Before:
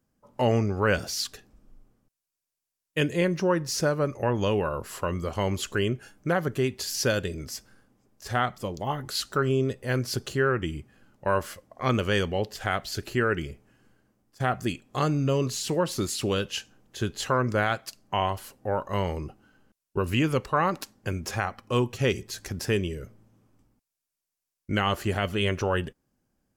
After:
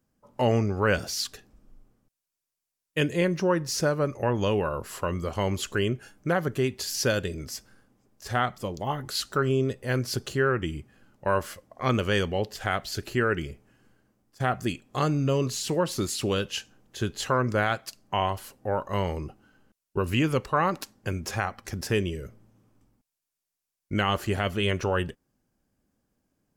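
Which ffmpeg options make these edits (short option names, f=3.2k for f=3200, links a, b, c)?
-filter_complex "[0:a]asplit=2[a][b];[a]atrim=end=21.652[c];[b]atrim=start=22.428[d];[c][d]acrossfade=d=0.004:c1=hsin:c2=hsin"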